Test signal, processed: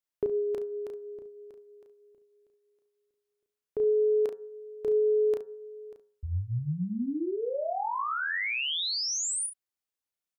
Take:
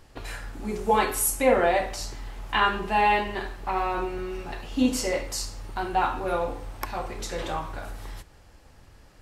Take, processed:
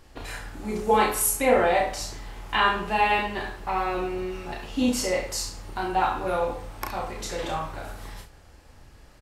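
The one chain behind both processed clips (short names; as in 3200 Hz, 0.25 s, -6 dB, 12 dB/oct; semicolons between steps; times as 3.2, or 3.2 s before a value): de-hum 104.6 Hz, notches 17; on a send: early reflections 33 ms -4 dB, 69 ms -12 dB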